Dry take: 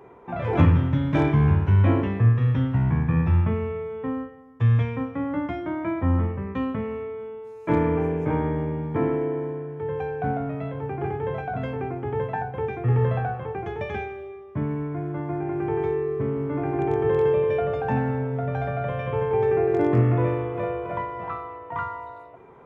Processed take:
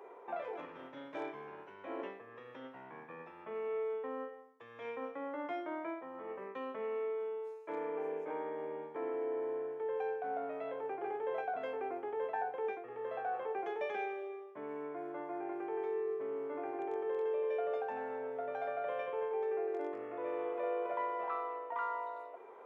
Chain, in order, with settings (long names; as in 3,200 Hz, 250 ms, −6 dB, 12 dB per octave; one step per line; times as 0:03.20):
reversed playback
downward compressor 10 to 1, threshold −29 dBFS, peak gain reduction 18 dB
reversed playback
four-pole ladder high-pass 370 Hz, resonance 30%
level +2 dB